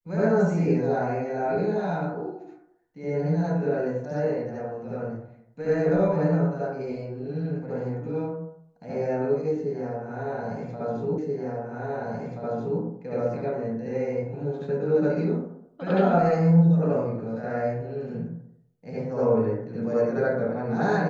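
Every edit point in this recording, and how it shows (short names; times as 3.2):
11.18 repeat of the last 1.63 s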